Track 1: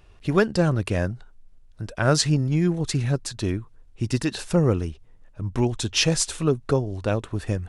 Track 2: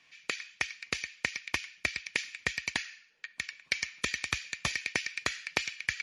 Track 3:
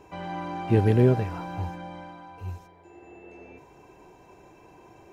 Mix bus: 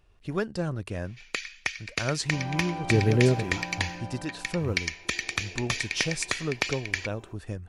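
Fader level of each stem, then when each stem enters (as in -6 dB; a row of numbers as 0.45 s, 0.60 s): -9.5 dB, +2.5 dB, -2.0 dB; 0.00 s, 1.05 s, 2.20 s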